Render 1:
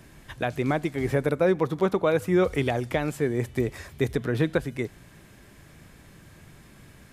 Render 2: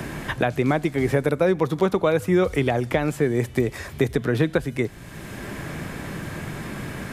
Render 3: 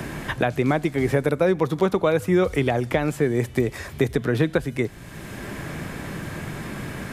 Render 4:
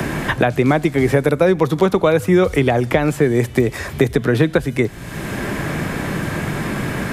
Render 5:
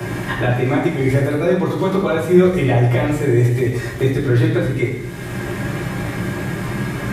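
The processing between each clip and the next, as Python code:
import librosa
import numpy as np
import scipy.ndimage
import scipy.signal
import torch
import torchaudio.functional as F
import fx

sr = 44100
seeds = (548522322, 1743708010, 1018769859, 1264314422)

y1 = fx.band_squash(x, sr, depth_pct=70)
y1 = y1 * 10.0 ** (3.5 / 20.0)
y2 = y1
y3 = fx.band_squash(y2, sr, depth_pct=40)
y3 = y3 * 10.0 ** (6.0 / 20.0)
y4 = fx.rev_fdn(y3, sr, rt60_s=0.91, lf_ratio=1.3, hf_ratio=0.95, size_ms=50.0, drr_db=-8.0)
y4 = y4 * 10.0 ** (-11.0 / 20.0)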